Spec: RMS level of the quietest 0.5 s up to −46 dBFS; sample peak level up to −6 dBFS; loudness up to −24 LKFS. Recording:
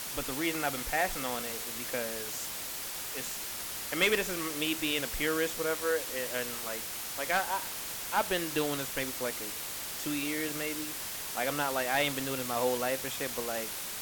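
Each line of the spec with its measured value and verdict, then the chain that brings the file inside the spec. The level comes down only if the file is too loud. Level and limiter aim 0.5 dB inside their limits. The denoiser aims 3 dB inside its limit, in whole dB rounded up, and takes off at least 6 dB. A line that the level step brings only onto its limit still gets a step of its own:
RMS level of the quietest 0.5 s −39 dBFS: out of spec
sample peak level −16.0 dBFS: in spec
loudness −32.0 LKFS: in spec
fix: broadband denoise 10 dB, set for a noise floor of −39 dBFS

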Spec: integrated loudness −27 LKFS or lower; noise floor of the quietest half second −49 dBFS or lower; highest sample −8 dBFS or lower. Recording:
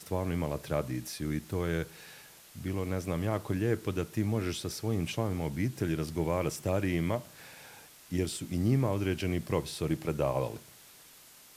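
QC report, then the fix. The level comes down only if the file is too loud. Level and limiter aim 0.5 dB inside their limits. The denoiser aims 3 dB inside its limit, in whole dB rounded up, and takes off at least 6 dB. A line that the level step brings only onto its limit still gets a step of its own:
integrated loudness −32.5 LKFS: in spec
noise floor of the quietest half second −55 dBFS: in spec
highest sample −15.5 dBFS: in spec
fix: no processing needed

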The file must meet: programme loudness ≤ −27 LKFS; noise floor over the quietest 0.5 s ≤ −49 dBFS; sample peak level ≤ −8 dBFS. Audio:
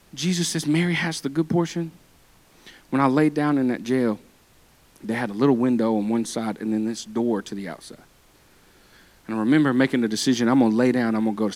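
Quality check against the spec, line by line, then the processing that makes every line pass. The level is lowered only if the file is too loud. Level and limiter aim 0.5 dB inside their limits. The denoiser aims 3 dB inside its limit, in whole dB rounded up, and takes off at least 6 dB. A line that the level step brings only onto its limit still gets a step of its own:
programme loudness −22.5 LKFS: out of spec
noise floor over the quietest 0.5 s −56 dBFS: in spec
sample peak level −5.5 dBFS: out of spec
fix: level −5 dB

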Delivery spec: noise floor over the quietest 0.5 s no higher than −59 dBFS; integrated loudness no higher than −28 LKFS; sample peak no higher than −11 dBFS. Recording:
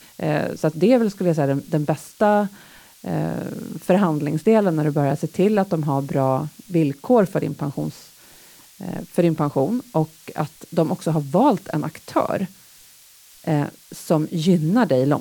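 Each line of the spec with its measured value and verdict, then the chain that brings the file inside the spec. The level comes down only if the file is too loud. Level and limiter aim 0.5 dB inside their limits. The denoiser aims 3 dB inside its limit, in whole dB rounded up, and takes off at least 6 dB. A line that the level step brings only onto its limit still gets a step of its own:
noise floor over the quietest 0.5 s −49 dBFS: out of spec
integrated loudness −21.5 LKFS: out of spec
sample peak −5.5 dBFS: out of spec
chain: broadband denoise 6 dB, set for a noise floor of −49 dBFS
level −7 dB

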